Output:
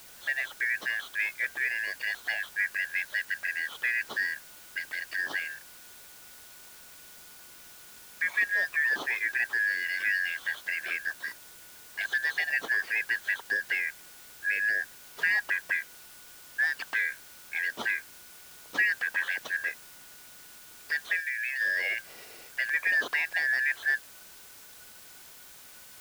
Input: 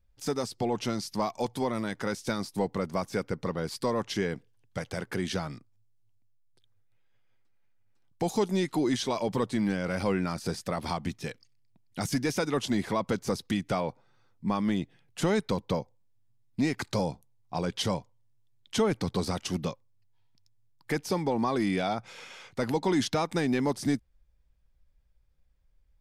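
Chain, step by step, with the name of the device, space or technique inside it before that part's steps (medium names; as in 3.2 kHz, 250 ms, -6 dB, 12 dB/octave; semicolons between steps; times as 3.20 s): split-band scrambled radio (four frequency bands reordered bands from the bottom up 3142; band-pass 320–3000 Hz; white noise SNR 18 dB); 21.20–21.61 s: amplifier tone stack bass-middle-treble 10-0-10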